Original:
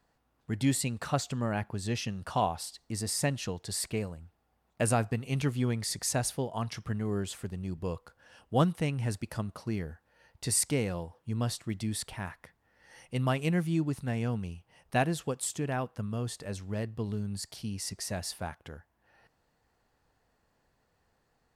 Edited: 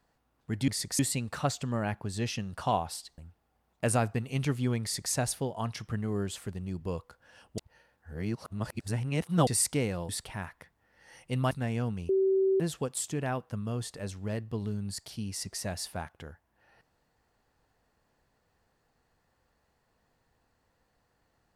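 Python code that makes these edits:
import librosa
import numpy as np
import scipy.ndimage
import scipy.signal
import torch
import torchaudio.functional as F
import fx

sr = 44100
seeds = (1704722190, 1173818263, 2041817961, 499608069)

y = fx.edit(x, sr, fx.cut(start_s=2.87, length_s=1.28),
    fx.duplicate(start_s=5.79, length_s=0.31, to_s=0.68),
    fx.reverse_span(start_s=8.55, length_s=1.89),
    fx.cut(start_s=11.06, length_s=0.86),
    fx.cut(start_s=13.34, length_s=0.63),
    fx.bleep(start_s=14.55, length_s=0.51, hz=384.0, db=-22.0), tone=tone)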